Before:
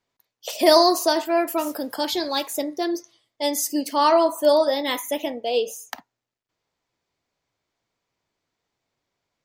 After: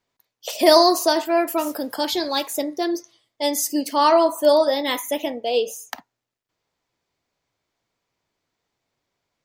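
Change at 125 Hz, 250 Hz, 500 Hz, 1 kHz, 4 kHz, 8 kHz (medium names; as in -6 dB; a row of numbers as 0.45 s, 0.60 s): no reading, +1.5 dB, +1.5 dB, +1.5 dB, +1.5 dB, +1.5 dB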